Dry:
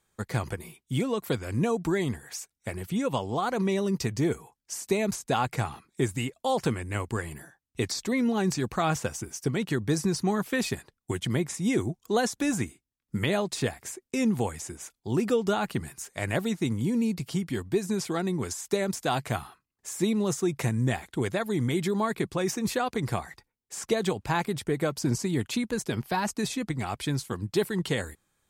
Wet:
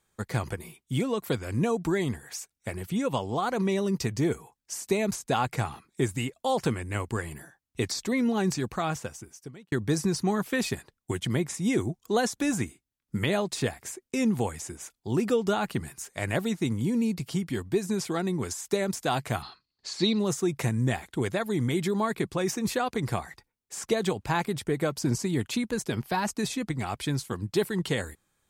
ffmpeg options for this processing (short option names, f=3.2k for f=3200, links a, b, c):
-filter_complex "[0:a]asettb=1/sr,asplit=3[a][b][c];[a]atrim=end=19.424[d];[b]atrim=start=19.42:end=20.19,asetpts=PTS-STARTPTS,afade=t=in:d=0.004:c=qsin,afade=t=out:st=0.766:d=0.004:c=qsin,lowpass=f=4.4k:t=q:w=14[e];[c]atrim=start=20.186[f];[d][e]acrossfade=d=0.004:c1=hsin:c2=qsin[g];[g][f]acrossfade=d=0.004:c1=qsin:c2=hsin,asplit=2[h][i];[h]atrim=end=9.72,asetpts=PTS-STARTPTS,afade=t=out:st=8.46:d=1.26[j];[i]atrim=start=9.72,asetpts=PTS-STARTPTS,afade=t=in:d=0.004:c=hsin[k];[j][k]concat=n=2:v=0:a=1"